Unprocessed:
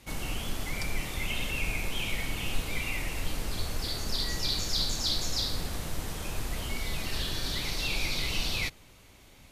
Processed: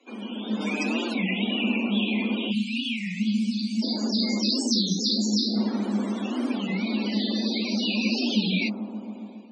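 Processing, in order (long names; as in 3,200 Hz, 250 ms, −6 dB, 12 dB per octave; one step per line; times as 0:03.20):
frequency shifter +200 Hz
0:00.60–0:01.17: comb filter 6.6 ms, depth 95%
0:04.79–0:05.57: dynamic equaliser 1,000 Hz, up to −4 dB, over −51 dBFS, Q 1.4
Chebyshev low-pass filter 9,300 Hz, order 2
0:02.55–0:03.15: low-shelf EQ 150 Hz −11.5 dB
bucket-brigade delay 137 ms, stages 1,024, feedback 84%, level −12 dB
0:02.51–0:03.83: gain on a spectral selection 250–2,100 Hz −16 dB
automatic gain control gain up to 8 dB
spectral peaks only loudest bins 64
wow of a warped record 33 1/3 rpm, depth 250 cents
level −2.5 dB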